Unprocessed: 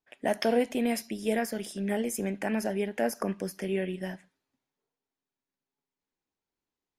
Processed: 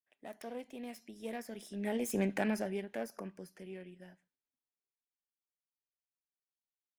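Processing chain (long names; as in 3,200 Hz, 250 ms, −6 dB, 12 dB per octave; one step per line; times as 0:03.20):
phase distortion by the signal itself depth 0.096 ms
source passing by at 0:02.26, 8 m/s, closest 1.7 metres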